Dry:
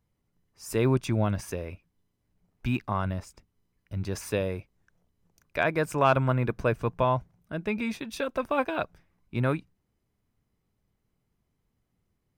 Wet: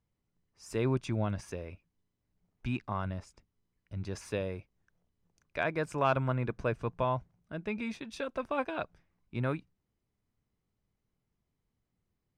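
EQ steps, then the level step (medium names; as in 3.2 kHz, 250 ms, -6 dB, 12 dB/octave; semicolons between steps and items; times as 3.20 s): low-pass 7.9 kHz 12 dB/octave; -6.0 dB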